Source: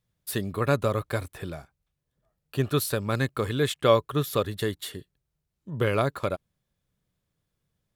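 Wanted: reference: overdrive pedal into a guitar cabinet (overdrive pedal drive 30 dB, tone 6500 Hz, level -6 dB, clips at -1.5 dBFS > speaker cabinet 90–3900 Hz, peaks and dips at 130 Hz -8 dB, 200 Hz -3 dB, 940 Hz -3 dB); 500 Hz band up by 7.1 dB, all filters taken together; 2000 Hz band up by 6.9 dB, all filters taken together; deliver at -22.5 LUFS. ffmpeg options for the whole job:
-filter_complex "[0:a]equalizer=f=500:t=o:g=8,equalizer=f=2k:t=o:g=8.5,asplit=2[a][b];[b]highpass=f=720:p=1,volume=30dB,asoftclip=type=tanh:threshold=-1.5dB[c];[a][c]amix=inputs=2:normalize=0,lowpass=f=6.5k:p=1,volume=-6dB,highpass=90,equalizer=f=130:t=q:w=4:g=-8,equalizer=f=200:t=q:w=4:g=-3,equalizer=f=940:t=q:w=4:g=-3,lowpass=f=3.9k:w=0.5412,lowpass=f=3.9k:w=1.3066,volume=-9.5dB"

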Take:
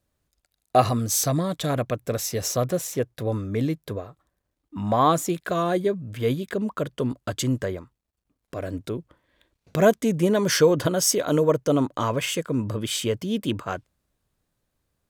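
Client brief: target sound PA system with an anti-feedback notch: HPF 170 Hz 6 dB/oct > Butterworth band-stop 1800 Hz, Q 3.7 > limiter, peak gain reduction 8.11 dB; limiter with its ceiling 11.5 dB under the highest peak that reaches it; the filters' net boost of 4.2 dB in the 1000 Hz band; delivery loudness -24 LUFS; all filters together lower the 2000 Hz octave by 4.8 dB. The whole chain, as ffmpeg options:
-af "equalizer=f=1k:t=o:g=7.5,equalizer=f=2k:t=o:g=-7.5,alimiter=limit=-14dB:level=0:latency=1,highpass=f=170:p=1,asuperstop=centerf=1800:order=8:qfactor=3.7,volume=6.5dB,alimiter=limit=-14dB:level=0:latency=1"

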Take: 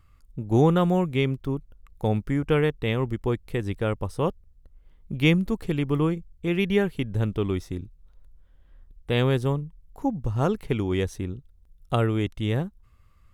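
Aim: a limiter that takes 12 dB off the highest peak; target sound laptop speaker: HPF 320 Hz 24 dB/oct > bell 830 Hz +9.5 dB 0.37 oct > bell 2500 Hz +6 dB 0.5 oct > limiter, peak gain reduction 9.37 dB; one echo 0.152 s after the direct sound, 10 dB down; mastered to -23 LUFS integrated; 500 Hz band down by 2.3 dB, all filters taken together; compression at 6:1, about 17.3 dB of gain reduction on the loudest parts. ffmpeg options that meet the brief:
-af "equalizer=f=500:t=o:g=-3,acompressor=threshold=-34dB:ratio=6,alimiter=level_in=9dB:limit=-24dB:level=0:latency=1,volume=-9dB,highpass=f=320:w=0.5412,highpass=f=320:w=1.3066,equalizer=f=830:t=o:w=0.37:g=9.5,equalizer=f=2.5k:t=o:w=0.5:g=6,aecho=1:1:152:0.316,volume=29dB,alimiter=limit=-11.5dB:level=0:latency=1"

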